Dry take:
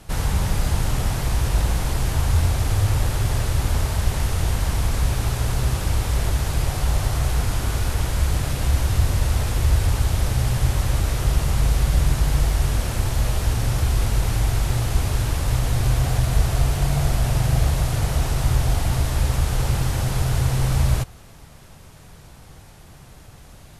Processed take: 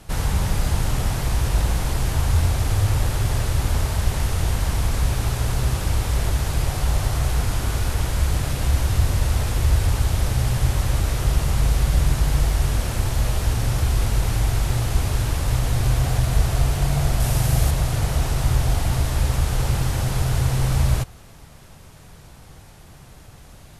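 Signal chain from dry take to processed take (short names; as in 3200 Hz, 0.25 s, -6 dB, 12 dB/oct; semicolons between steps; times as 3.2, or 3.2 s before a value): 17.2–17.71 high shelf 6500 Hz +8 dB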